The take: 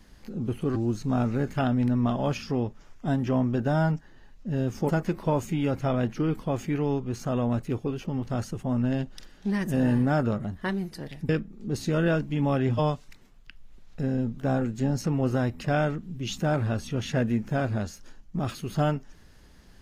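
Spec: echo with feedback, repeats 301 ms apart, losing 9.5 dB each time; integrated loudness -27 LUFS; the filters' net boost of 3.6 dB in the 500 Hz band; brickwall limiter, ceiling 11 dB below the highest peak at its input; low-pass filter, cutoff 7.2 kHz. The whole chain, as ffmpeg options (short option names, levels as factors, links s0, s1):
-af "lowpass=7200,equalizer=f=500:t=o:g=4.5,alimiter=limit=0.0708:level=0:latency=1,aecho=1:1:301|602|903|1204:0.335|0.111|0.0365|0.012,volume=1.88"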